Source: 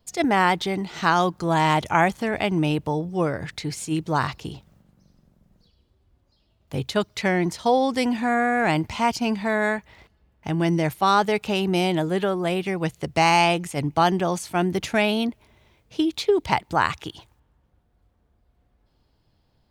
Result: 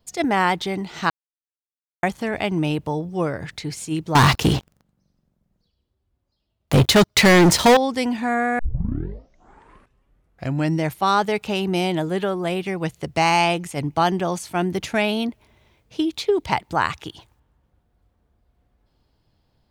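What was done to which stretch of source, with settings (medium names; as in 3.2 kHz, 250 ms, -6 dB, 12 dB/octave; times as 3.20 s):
1.10–2.03 s: mute
4.15–7.77 s: waveshaping leveller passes 5
8.59 s: tape start 2.25 s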